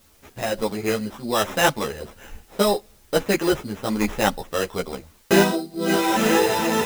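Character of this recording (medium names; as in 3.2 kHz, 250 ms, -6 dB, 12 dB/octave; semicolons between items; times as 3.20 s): aliases and images of a low sample rate 4.5 kHz, jitter 0%; random-step tremolo; a quantiser's noise floor 10-bit, dither triangular; a shimmering, thickened sound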